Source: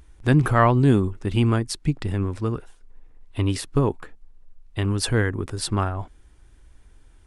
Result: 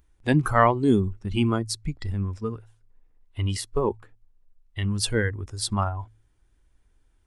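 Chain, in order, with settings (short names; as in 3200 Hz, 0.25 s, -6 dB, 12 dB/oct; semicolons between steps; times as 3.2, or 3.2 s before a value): spectral noise reduction 12 dB; de-hum 54.51 Hz, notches 2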